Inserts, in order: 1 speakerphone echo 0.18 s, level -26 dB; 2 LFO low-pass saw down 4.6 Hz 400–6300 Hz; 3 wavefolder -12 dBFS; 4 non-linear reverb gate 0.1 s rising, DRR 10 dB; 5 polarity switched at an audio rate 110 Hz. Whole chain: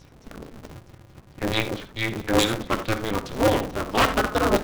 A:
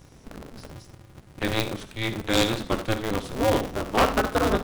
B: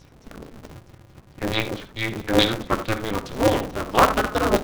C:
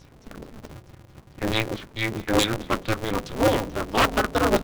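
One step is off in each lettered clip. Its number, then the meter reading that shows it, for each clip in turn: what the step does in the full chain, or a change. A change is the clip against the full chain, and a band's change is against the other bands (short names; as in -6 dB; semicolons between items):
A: 2, loudness change -1.5 LU; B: 3, distortion -7 dB; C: 4, crest factor change -2.0 dB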